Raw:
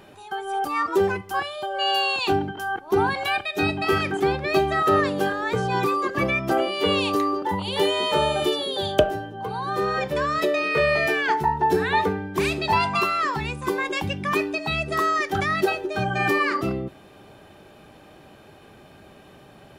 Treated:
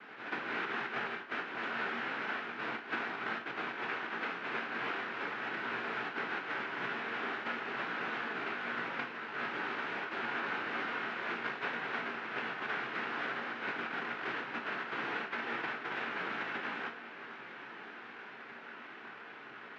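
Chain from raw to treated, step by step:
dynamic equaliser 340 Hz, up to −5 dB, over −35 dBFS, Q 1
downward compressor 12 to 1, threshold −33 dBFS, peak gain reduction 19.5 dB
cochlear-implant simulation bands 1
loudspeaker in its box 230–2,400 Hz, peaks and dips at 250 Hz +5 dB, 390 Hz +5 dB, 570 Hz −4 dB, 1,500 Hz +7 dB
feedback delay with all-pass diffusion 1,262 ms, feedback 63%, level −14.5 dB
on a send at −3.5 dB: convolution reverb RT60 0.30 s, pre-delay 7 ms

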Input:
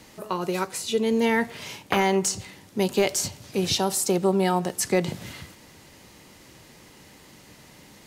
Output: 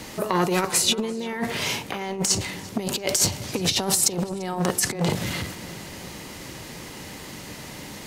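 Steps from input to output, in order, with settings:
compressor whose output falls as the input rises −28 dBFS, ratio −0.5
on a send: feedback echo with a low-pass in the loop 343 ms, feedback 58%, low-pass 3,900 Hz, level −18 dB
on the sum: saturating transformer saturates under 890 Hz
level +6.5 dB

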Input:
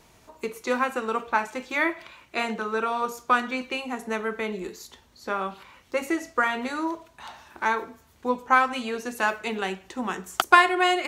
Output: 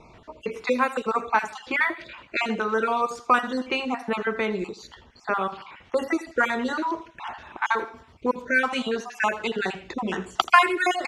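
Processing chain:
time-frequency cells dropped at random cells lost 37%
low-pass that shuts in the quiet parts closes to 2,800 Hz, open at −20 dBFS
in parallel at +3 dB: downward compressor, threshold −34 dBFS, peak gain reduction 20.5 dB
on the sum: repeating echo 82 ms, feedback 27%, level −16.5 dB

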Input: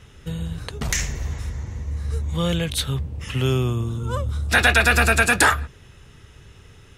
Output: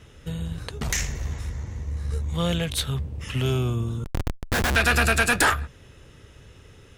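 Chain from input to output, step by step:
noise in a band 220–560 Hz −58 dBFS
0:04.04–0:04.76: comparator with hysteresis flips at −18 dBFS
tube saturation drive 12 dB, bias 0.5

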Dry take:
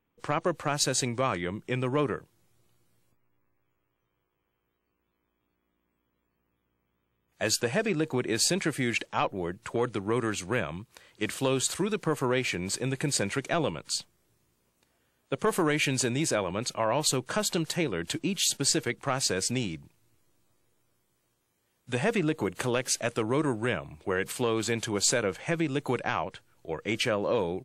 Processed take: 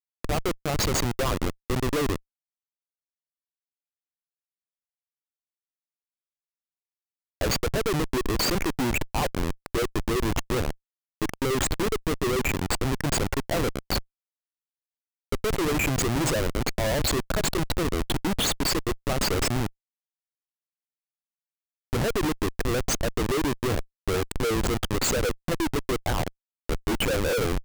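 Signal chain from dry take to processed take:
spectral envelope exaggerated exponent 3
feedback echo with a band-pass in the loop 404 ms, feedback 71%, band-pass 2,200 Hz, level −20.5 dB
comparator with hysteresis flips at −28 dBFS
level +7 dB

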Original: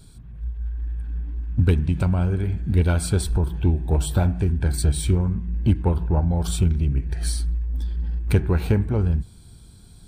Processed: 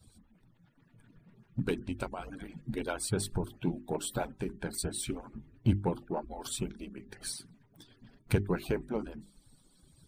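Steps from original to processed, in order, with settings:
harmonic-percussive split with one part muted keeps percussive
mains-hum notches 50/100/150/200/250/300/350/400 Hz
level −5.5 dB

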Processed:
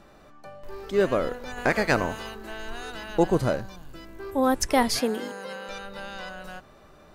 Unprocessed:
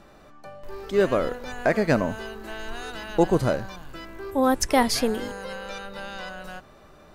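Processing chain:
0:01.56–0:02.34: ceiling on every frequency bin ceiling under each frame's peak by 13 dB
0:03.61–0:04.20: parametric band 1,500 Hz −6.5 dB 2.8 octaves
0:05.00–0:05.69: high-pass filter 170 Hz 24 dB per octave
level −1.5 dB

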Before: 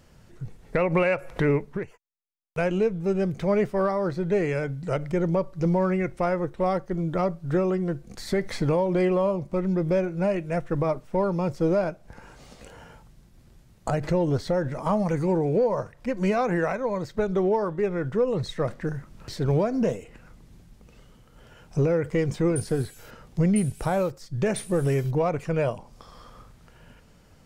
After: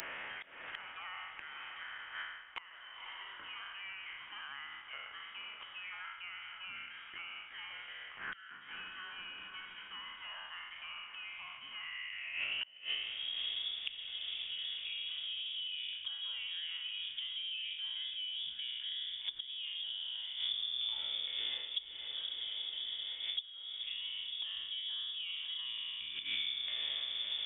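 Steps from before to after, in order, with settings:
peak hold with a decay on every bin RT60 0.97 s
high-shelf EQ 2,000 Hz −10 dB
reversed playback
downward compressor 16 to 1, threshold −35 dBFS, peak gain reduction 18.5 dB
reversed playback
gate with flip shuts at −35 dBFS, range −28 dB
high-pass filter sweep 2,400 Hz → 63 Hz, 0:11.74–0:14.17
feedback delay with all-pass diffusion 523 ms, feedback 52%, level −11.5 dB
voice inversion scrambler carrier 3,500 Hz
multiband upward and downward compressor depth 100%
level +16.5 dB

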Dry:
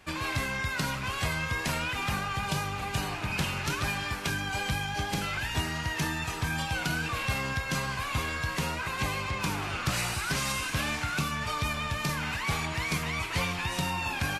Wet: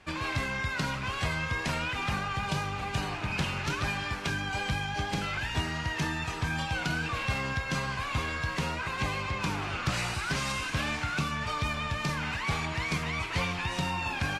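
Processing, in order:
high-frequency loss of the air 56 metres

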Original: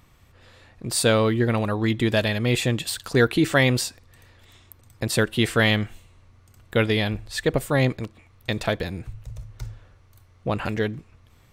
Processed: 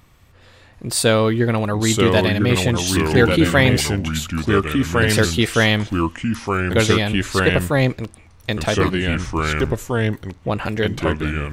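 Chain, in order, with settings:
delay with pitch and tempo change per echo 735 ms, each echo −3 semitones, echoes 2
level +3.5 dB

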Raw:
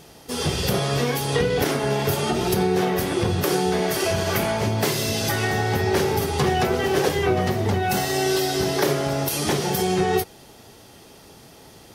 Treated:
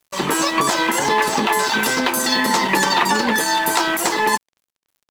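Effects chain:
auto-filter low-pass saw down 1.4 Hz 970–5,600 Hz
wrong playback speed 33 rpm record played at 78 rpm
dead-zone distortion −37.5 dBFS
level +4 dB

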